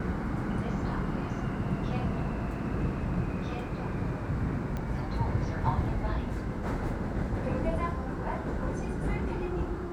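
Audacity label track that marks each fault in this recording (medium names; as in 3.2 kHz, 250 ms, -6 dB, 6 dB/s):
4.770000	4.770000	pop -23 dBFS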